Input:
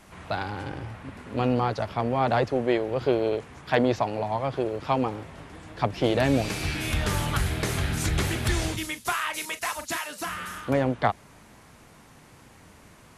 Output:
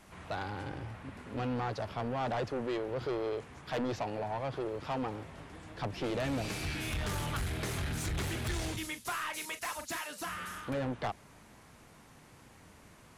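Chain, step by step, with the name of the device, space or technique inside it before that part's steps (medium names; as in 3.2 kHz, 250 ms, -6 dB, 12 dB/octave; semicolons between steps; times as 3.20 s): saturation between pre-emphasis and de-emphasis (treble shelf 6.6 kHz +8.5 dB; saturation -24.5 dBFS, distortion -9 dB; treble shelf 6.6 kHz -8.5 dB); trim -5 dB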